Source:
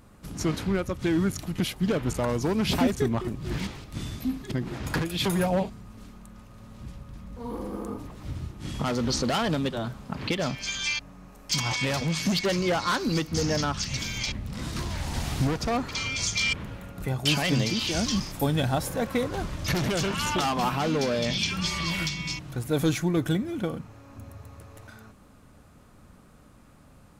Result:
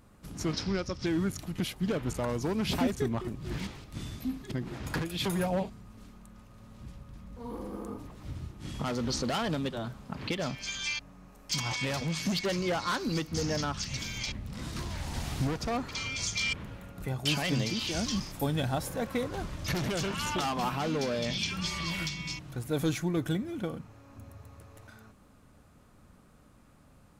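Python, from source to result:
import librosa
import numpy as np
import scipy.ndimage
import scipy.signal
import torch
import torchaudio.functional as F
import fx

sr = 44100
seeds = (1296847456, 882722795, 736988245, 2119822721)

y = fx.lowpass_res(x, sr, hz=5300.0, q=8.0, at=(0.53, 1.06))
y = y * 10.0 ** (-5.0 / 20.0)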